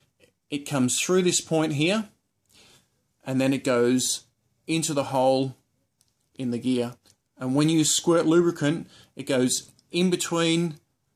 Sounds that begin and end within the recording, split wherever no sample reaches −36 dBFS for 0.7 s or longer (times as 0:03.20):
0:03.27–0:05.51